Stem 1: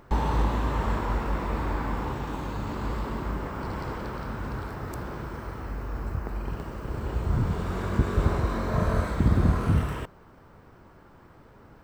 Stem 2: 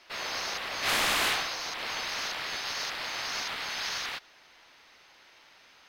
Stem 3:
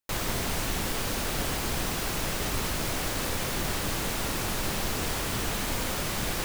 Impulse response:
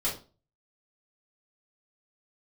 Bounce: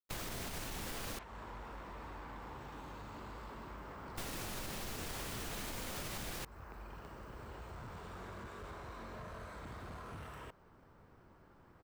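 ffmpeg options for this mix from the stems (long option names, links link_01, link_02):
-filter_complex "[0:a]acrossover=split=490|1000[link_01][link_02][link_03];[link_01]acompressor=threshold=-39dB:ratio=4[link_04];[link_02]acompressor=threshold=-42dB:ratio=4[link_05];[link_03]acompressor=threshold=-42dB:ratio=4[link_06];[link_04][link_05][link_06]amix=inputs=3:normalize=0,asoftclip=type=hard:threshold=-33.5dB,adelay=450,volume=-10dB[link_07];[1:a]adynamicsmooth=sensitivity=1:basefreq=960,volume=-11dB[link_08];[2:a]volume=-0.5dB,asplit=3[link_09][link_10][link_11];[link_09]atrim=end=1.19,asetpts=PTS-STARTPTS,afade=type=out:start_time=1.186:duration=0.004:curve=hsin[link_12];[link_10]atrim=start=1.19:end=4.16,asetpts=PTS-STARTPTS,volume=0[link_13];[link_11]atrim=start=4.16,asetpts=PTS-STARTPTS,afade=type=in:duration=0.004:curve=hsin[link_14];[link_12][link_13][link_14]concat=n=3:v=0:a=1[link_15];[link_08][link_15]amix=inputs=2:normalize=0,agate=range=-33dB:threshold=-33dB:ratio=16:detection=peak,alimiter=limit=-24dB:level=0:latency=1:release=57,volume=0dB[link_16];[link_07][link_16]amix=inputs=2:normalize=0,acompressor=threshold=-41dB:ratio=4"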